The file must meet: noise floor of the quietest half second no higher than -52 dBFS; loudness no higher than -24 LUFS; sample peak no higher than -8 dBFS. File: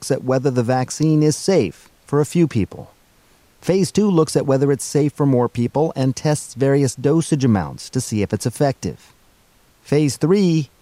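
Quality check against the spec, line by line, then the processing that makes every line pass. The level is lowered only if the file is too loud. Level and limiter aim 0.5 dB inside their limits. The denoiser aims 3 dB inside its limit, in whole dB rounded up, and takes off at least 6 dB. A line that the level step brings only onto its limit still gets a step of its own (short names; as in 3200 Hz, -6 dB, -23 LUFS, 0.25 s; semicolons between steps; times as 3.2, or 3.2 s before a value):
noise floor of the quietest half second -55 dBFS: OK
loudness -18.5 LUFS: fail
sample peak -5.0 dBFS: fail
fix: gain -6 dB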